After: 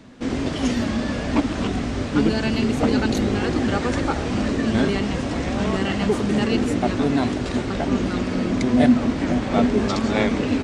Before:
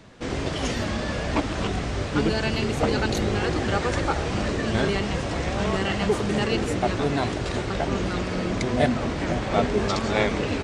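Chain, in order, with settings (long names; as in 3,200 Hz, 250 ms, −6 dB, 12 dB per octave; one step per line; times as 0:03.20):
parametric band 250 Hz +11.5 dB 0.48 octaves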